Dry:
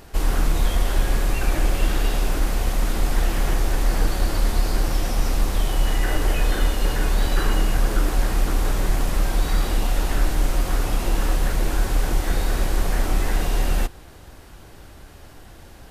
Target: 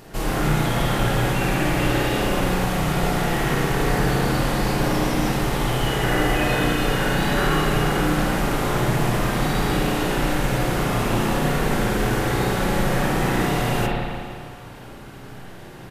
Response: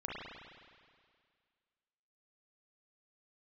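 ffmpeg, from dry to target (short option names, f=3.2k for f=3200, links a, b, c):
-filter_complex "[0:a]lowshelf=f=100:t=q:w=3:g=-8,asplit=2[a][b];[b]adelay=50,volume=-13dB[c];[a][c]amix=inputs=2:normalize=0[d];[1:a]atrim=start_sample=2205[e];[d][e]afir=irnorm=-1:irlink=0,volume=4dB"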